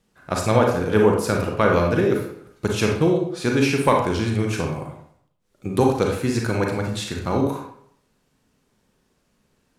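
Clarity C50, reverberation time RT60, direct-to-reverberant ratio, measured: 3.5 dB, 0.65 s, 0.5 dB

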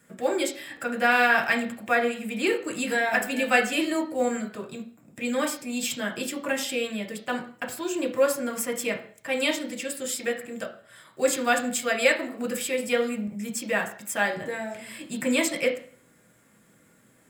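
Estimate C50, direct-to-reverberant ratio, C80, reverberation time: 10.5 dB, 1.5 dB, 15.0 dB, 0.45 s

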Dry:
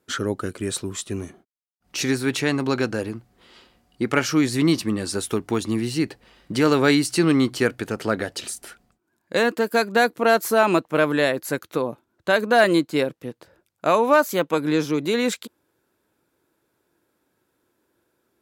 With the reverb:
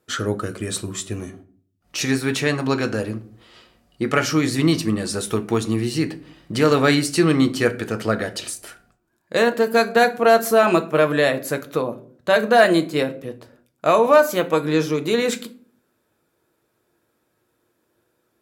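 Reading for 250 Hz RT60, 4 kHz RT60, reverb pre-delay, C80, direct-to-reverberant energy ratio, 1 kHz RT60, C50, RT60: 0.75 s, 0.30 s, 6 ms, 21.0 dB, 7.5 dB, 0.45 s, 17.0 dB, 0.50 s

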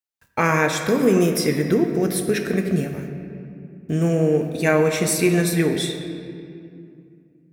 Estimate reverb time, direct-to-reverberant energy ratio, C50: 2.5 s, 4.5 dB, 6.5 dB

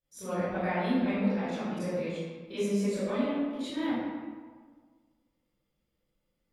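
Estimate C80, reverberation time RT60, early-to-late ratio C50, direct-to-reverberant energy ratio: −1.5 dB, 1.6 s, −5.5 dB, −15.5 dB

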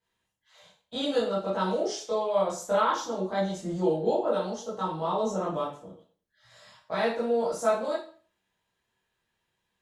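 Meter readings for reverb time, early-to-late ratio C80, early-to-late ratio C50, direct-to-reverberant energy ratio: 0.40 s, 10.0 dB, 4.0 dB, −9.5 dB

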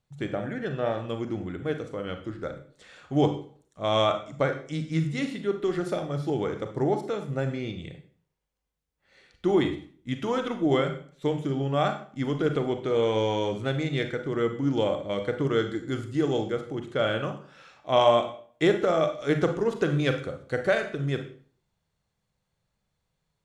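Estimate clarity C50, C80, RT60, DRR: 9.0 dB, 13.5 dB, 0.50 s, 6.0 dB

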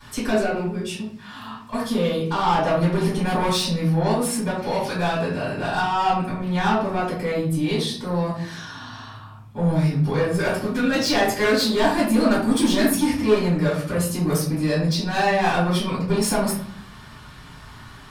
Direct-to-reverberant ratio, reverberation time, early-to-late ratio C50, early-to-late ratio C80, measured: −10.0 dB, 0.60 s, 3.0 dB, 8.0 dB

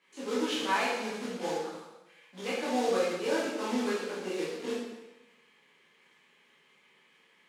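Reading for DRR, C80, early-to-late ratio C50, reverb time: −9.5 dB, 3.0 dB, 0.0 dB, 1.0 s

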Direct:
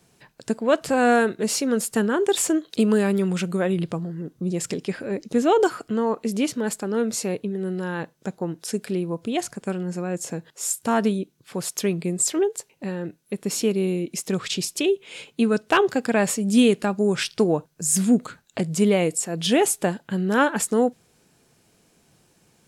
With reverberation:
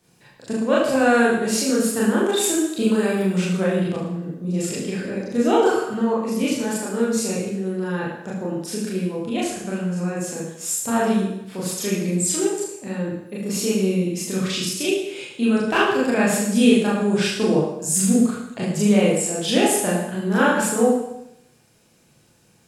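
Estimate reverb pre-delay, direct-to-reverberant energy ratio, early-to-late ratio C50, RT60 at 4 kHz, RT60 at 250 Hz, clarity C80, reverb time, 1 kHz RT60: 27 ms, −7.0 dB, 1.5 dB, 0.80 s, 0.80 s, 4.5 dB, 0.80 s, 0.80 s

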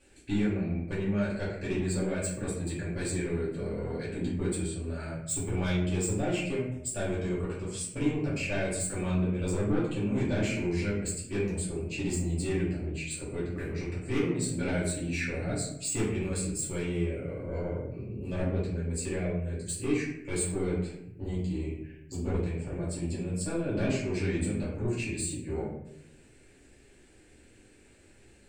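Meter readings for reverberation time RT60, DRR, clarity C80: 0.80 s, −8.5 dB, 6.0 dB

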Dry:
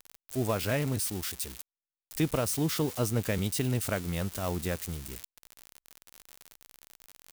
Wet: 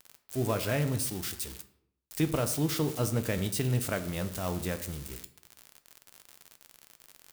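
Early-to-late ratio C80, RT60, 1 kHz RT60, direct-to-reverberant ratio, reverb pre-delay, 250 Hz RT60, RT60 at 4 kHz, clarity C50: 15.5 dB, 0.75 s, 0.70 s, 8.5 dB, 4 ms, 0.80 s, 0.45 s, 13.5 dB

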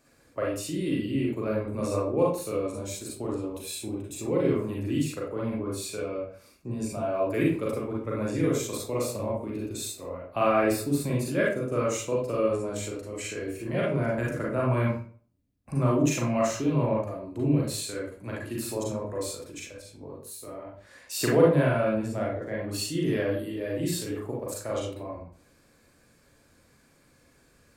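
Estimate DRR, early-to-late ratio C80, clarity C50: −4.5 dB, 7.5 dB, 1.5 dB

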